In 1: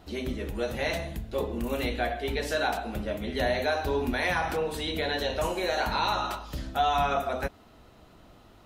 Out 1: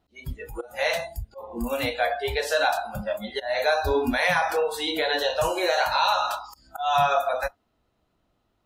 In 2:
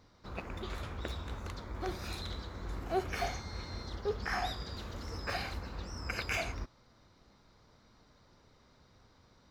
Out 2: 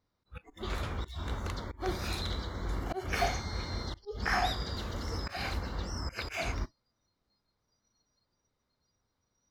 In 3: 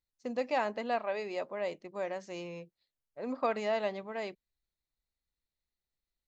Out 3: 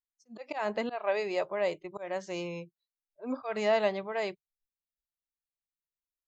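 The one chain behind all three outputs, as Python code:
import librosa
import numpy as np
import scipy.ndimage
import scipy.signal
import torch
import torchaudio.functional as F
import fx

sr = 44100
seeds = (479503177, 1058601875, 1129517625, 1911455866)

y = fx.auto_swell(x, sr, attack_ms=189.0)
y = fx.noise_reduce_blind(y, sr, reduce_db=23)
y = y * 10.0 ** (5.5 / 20.0)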